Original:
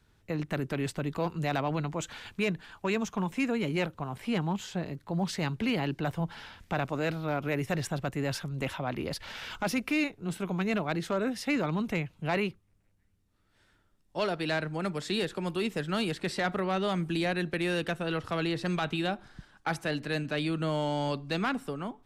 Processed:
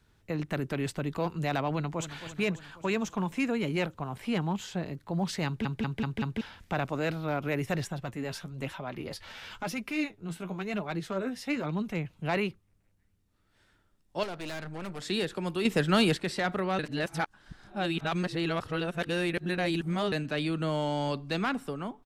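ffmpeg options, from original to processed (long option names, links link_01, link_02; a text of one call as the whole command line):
ffmpeg -i in.wav -filter_complex "[0:a]asplit=2[link_01][link_02];[link_02]afade=type=in:start_time=1.72:duration=0.01,afade=type=out:start_time=2.21:duration=0.01,aecho=0:1:270|540|810|1080|1350|1620|1890:0.266073|0.159644|0.0957861|0.0574717|0.034483|0.0206898|0.0124139[link_03];[link_01][link_03]amix=inputs=2:normalize=0,asettb=1/sr,asplit=3[link_04][link_05][link_06];[link_04]atrim=end=7.844[link_07];[link_05]atrim=start=7.84:end=12.05,asetpts=PTS-STARTPTS,afade=type=in:duration=0.004:curve=qsin,afade=type=out:start_time=4.206:duration=0.004:curve=qsin,flanger=delay=4.8:depth=7.4:regen=42:speed=1:shape=sinusoidal[link_08];[link_06]atrim=start=12.046[link_09];[link_07][link_08]acrossfade=duration=0.004:curve1=hsin:curve2=qsin[link_10];[link_10][link_09]acrossfade=duration=0.004:curve1=qsin:curve2=hsin,asettb=1/sr,asplit=3[link_11][link_12][link_13];[link_11]atrim=end=14.234[link_14];[link_12]atrim=start=14.23:end=15.02,asetpts=PTS-STARTPTS,afade=type=in:duration=0.004:curve=qsin,afade=type=out:start_time=0.786:duration=0.004:curve=qsin,aeval=exprs='(tanh(56.2*val(0)+0.6)-tanh(0.6))/56.2':channel_layout=same[link_15];[link_13]atrim=start=15.016[link_16];[link_14][link_15]acrossfade=duration=0.004:curve1=hsin:curve2=qsin[link_17];[link_17][link_16]acrossfade=duration=0.004:curve1=qsin:curve2=hsin,asettb=1/sr,asplit=3[link_18][link_19][link_20];[link_18]atrim=end=15.654[link_21];[link_19]atrim=start=15.65:end=16.17,asetpts=PTS-STARTPTS,afade=type=in:duration=0.004:curve=qsin,afade=type=out:start_time=0.516:duration=0.004:curve=qsin,acontrast=70[link_22];[link_20]atrim=start=16.166[link_23];[link_21][link_22]acrossfade=duration=0.004:curve1=hsin:curve2=qsin[link_24];[link_24][link_23]acrossfade=duration=0.004:curve1=qsin:curve2=hsin,asplit=8[link_25][link_26][link_27][link_28][link_29][link_30][link_31][link_32];[link_25]atrim=end=5.652[link_33];[link_26]atrim=start=5.458:end=5.652[link_34];[link_27]atrim=start=5.458:end=5.652[link_35];[link_28]atrim=start=5.458:end=5.652[link_36];[link_29]atrim=start=5.458:end=5.652[link_37];[link_30]atrim=start=6.408:end=16.792[link_38];[link_31]atrim=start=16.788:end=20.122,asetpts=PTS-STARTPTS,areverse[link_39];[link_32]atrim=start=20.118[link_40];[link_33][link_34]acrossfade=duration=0.004:curve1=hsin:curve2=hsin[link_41];[link_41][link_35]acrossfade=duration=0.004:curve1=hsin:curve2=hsin[link_42];[link_42][link_36]acrossfade=duration=0.004:curve1=hsin:curve2=hsin[link_43];[link_43][link_37]acrossfade=duration=0.004:curve1=hsin:curve2=hsin[link_44];[link_44][link_38]acrossfade=duration=0.004:curve1=hsin:curve2=hsin[link_45];[link_45][link_39]acrossfade=duration=0.004:curve1=hsin:curve2=hsin[link_46];[link_46][link_40]acrossfade=duration=0.004:curve1=hsin:curve2=hsin" out.wav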